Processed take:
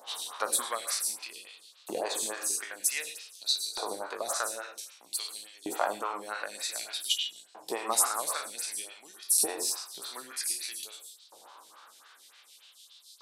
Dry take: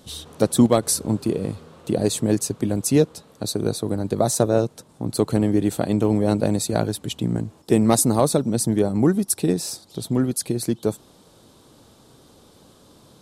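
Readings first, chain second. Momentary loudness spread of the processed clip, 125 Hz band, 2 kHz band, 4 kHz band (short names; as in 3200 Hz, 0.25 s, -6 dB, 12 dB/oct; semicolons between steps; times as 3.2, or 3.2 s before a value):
16 LU, under -40 dB, 0.0 dB, 0.0 dB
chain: spectral trails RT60 0.49 s; compressor 1.5:1, threshold -27 dBFS, peak gain reduction 6.5 dB; non-linear reverb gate 0.13 s rising, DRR 6.5 dB; LFO high-pass saw up 0.53 Hz 790–4500 Hz; photocell phaser 3.5 Hz; gain +1.5 dB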